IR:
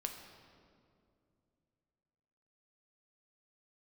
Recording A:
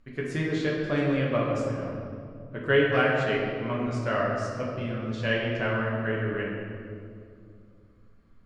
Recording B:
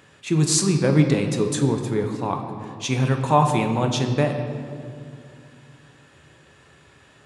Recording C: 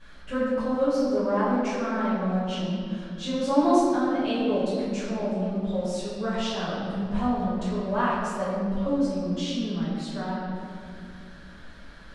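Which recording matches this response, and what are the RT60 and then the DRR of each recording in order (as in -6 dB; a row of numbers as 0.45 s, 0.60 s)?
B; 2.4 s, 2.4 s, 2.4 s; -5.0 dB, 3.5 dB, -13.0 dB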